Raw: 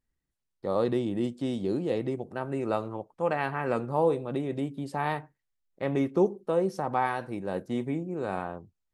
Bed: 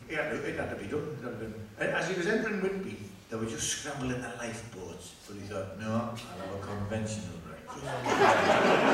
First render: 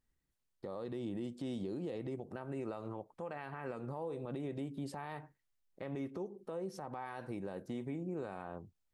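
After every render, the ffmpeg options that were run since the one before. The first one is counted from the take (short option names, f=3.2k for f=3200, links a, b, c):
-af "acompressor=threshold=-30dB:ratio=6,alimiter=level_in=8dB:limit=-24dB:level=0:latency=1:release=184,volume=-8dB"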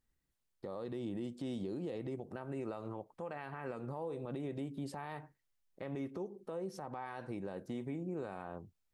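-filter_complex "[0:a]asettb=1/sr,asplit=3[a][b][c];[a]atrim=end=6.884[d];[b]atrim=start=6.88:end=7.62,asetpts=PTS-STARTPTS,afade=t=in:d=0.004:c=qsin,afade=t=out:st=0.736:d=0.004:c=qsin,lowpass=9.3k[e];[c]atrim=start=7.616[f];[d][e]acrossfade=d=0.004:c1=hsin:c2=qsin[g];[g][f]acrossfade=d=0.004:c1=qsin:c2=hsin"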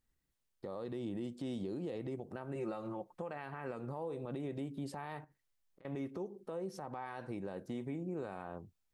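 -filter_complex "[0:a]asettb=1/sr,asplit=3[a][b][c];[a]atrim=end=2.554[d];[b]atrim=start=2.55:end=3.22,asetpts=PTS-STARTPTS,afade=t=in:d=0.004:c=qsin,afade=t=out:st=0.666:d=0.004:c=qsin,aecho=1:1:5.6:0.68,atrim=end_sample=29547[e];[c]atrim=start=3.216[f];[d][e]acrossfade=d=0.004:c1=hsin:c2=qsin[g];[g][f]acrossfade=d=0.004:c1=qsin:c2=hsin,asettb=1/sr,asplit=3[h][i][j];[h]atrim=end=5.244[k];[i]atrim=start=5.24:end=5.85,asetpts=PTS-STARTPTS,afade=t=in:d=0.004:c=qsin,afade=t=out:st=0.606:d=0.004:c=qsin,acompressor=threshold=-60dB:ratio=8:attack=3.2:release=140:knee=1:detection=peak[l];[j]atrim=start=5.846[m];[k][l]acrossfade=d=0.004:c1=hsin:c2=qsin[n];[n][m]acrossfade=d=0.004:c1=qsin:c2=hsin"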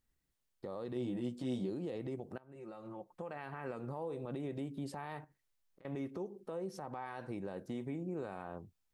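-filter_complex "[0:a]asettb=1/sr,asplit=3[a][b][c];[a]atrim=end=0.944[d];[b]atrim=start=0.94:end=1.7,asetpts=PTS-STARTPTS,afade=t=in:d=0.004:c=qsin,afade=t=out:st=0.756:d=0.004:c=qsin,asplit=2[e][f];[f]adelay=16,volume=-4dB[g];[e][g]amix=inputs=2:normalize=0,atrim=end_sample=33516[h];[c]atrim=start=1.696[i];[d][h]acrossfade=d=0.004:c1=hsin:c2=qsin[j];[j][i]acrossfade=d=0.004:c1=qsin:c2=hsin,asplit=2[k][l];[k]atrim=end=2.38,asetpts=PTS-STARTPTS,afade=t=out:st=2.376:d=0.004:c=hsin:silence=0.0944061[m];[l]atrim=start=2.38,asetpts=PTS-STARTPTS,afade=t=in:d=1.09:silence=0.0944061[n];[m][n]concat=n=2:v=0:a=1"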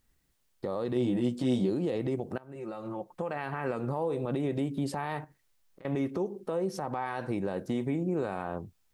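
-af "volume=10dB"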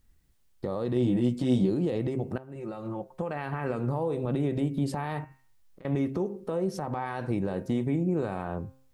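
-af "lowshelf=f=170:g=10,bandreject=f=132.1:t=h:w=4,bandreject=f=264.2:t=h:w=4,bandreject=f=396.3:t=h:w=4,bandreject=f=528.4:t=h:w=4,bandreject=f=660.5:t=h:w=4,bandreject=f=792.6:t=h:w=4,bandreject=f=924.7:t=h:w=4,bandreject=f=1.0568k:t=h:w=4,bandreject=f=1.1889k:t=h:w=4,bandreject=f=1.321k:t=h:w=4,bandreject=f=1.4531k:t=h:w=4,bandreject=f=1.5852k:t=h:w=4,bandreject=f=1.7173k:t=h:w=4,bandreject=f=1.8494k:t=h:w=4,bandreject=f=1.9815k:t=h:w=4,bandreject=f=2.1136k:t=h:w=4,bandreject=f=2.2457k:t=h:w=4,bandreject=f=2.3778k:t=h:w=4,bandreject=f=2.5099k:t=h:w=4,bandreject=f=2.642k:t=h:w=4,bandreject=f=2.7741k:t=h:w=4,bandreject=f=2.9062k:t=h:w=4"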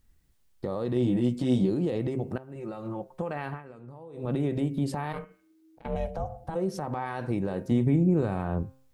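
-filter_complex "[0:a]asplit=3[a][b][c];[a]afade=t=out:st=5.12:d=0.02[d];[b]aeval=exprs='val(0)*sin(2*PI*320*n/s)':c=same,afade=t=in:st=5.12:d=0.02,afade=t=out:st=6.54:d=0.02[e];[c]afade=t=in:st=6.54:d=0.02[f];[d][e][f]amix=inputs=3:normalize=0,asettb=1/sr,asplit=3[g][h][i];[g]atrim=end=7.714[j];[h]atrim=start=7.71:end=8.63,asetpts=PTS-STARTPTS,afade=t=in:d=0.004:c=qsin,afade=t=out:st=0.916:d=0.004:c=qsin,lowshelf=f=200:g=10[k];[i]atrim=start=8.626[l];[j][k]acrossfade=d=0.004:c1=hsin:c2=qsin[m];[m][l]acrossfade=d=0.004:c1=qsin:c2=hsin,asplit=3[n][o][p];[n]atrim=end=3.63,asetpts=PTS-STARTPTS,afade=t=out:st=3.47:d=0.16:silence=0.149624[q];[o]atrim=start=3.63:end=4.13,asetpts=PTS-STARTPTS,volume=-16.5dB[r];[p]atrim=start=4.13,asetpts=PTS-STARTPTS,afade=t=in:d=0.16:silence=0.149624[s];[q][r][s]concat=n=3:v=0:a=1"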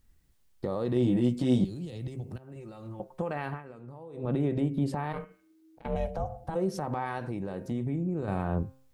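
-filter_complex "[0:a]asettb=1/sr,asplit=3[a][b][c];[a]atrim=end=1.644[d];[b]atrim=start=1.64:end=3,asetpts=PTS-STARTPTS,afade=t=in:d=0.004:c=qsin,afade=t=out:st=1.356:d=0.004:c=qsin,acrossover=split=140|3000[e][f][g];[f]acompressor=threshold=-44dB:ratio=5:attack=3.2:release=140:knee=2.83:detection=peak[h];[e][h][g]amix=inputs=3:normalize=0[i];[c]atrim=start=2.996[j];[d][i]acrossfade=d=0.004:c1=hsin:c2=qsin[k];[k][j]acrossfade=d=0.004:c1=qsin:c2=hsin,asettb=1/sr,asplit=3[l][m][n];[l]atrim=end=4.164[o];[m]atrim=start=4.16:end=5.2,asetpts=PTS-STARTPTS,afade=t=in:d=0.004:c=qsin,afade=t=out:st=1.036:d=0.004:c=qsin,highshelf=f=3.3k:g=-7[p];[n]atrim=start=5.196[q];[o][p]acrossfade=d=0.004:c1=hsin:c2=qsin[r];[r][q]acrossfade=d=0.004:c1=qsin:c2=hsin,asettb=1/sr,asplit=3[s][t][u];[s]atrim=end=7.184[v];[t]atrim=start=7.18:end=8.28,asetpts=PTS-STARTPTS,afade=t=in:d=0.004:c=qsin,afade=t=out:st=1.096:d=0.004:c=qsin,acompressor=threshold=-34dB:ratio=2:attack=3.2:release=140:knee=1:detection=peak[w];[u]atrim=start=8.276[x];[v][w]acrossfade=d=0.004:c1=hsin:c2=qsin[y];[y][x]acrossfade=d=0.004:c1=qsin:c2=hsin"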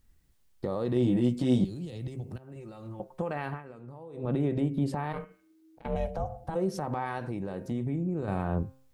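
-af anull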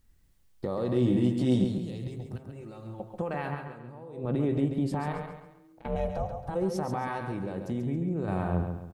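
-af "aecho=1:1:137|274|411|548:0.447|0.165|0.0612|0.0226"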